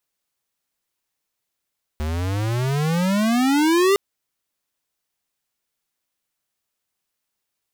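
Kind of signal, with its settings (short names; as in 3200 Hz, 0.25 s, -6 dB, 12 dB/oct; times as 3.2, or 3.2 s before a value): gliding synth tone square, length 1.96 s, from 74.1 Hz, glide +29.5 st, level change +9 dB, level -15.5 dB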